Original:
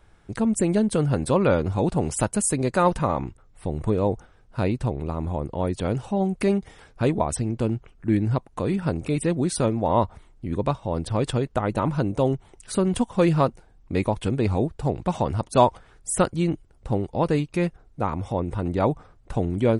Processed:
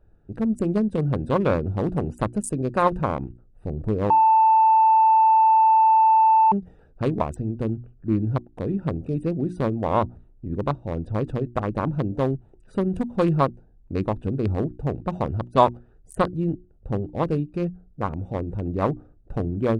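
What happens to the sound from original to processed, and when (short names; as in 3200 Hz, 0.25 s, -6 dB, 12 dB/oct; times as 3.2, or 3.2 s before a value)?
4.1–6.52 bleep 885 Hz -12.5 dBFS
whole clip: Wiener smoothing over 41 samples; bell 1100 Hz +7.5 dB 0.28 oct; notches 60/120/180/240/300/360 Hz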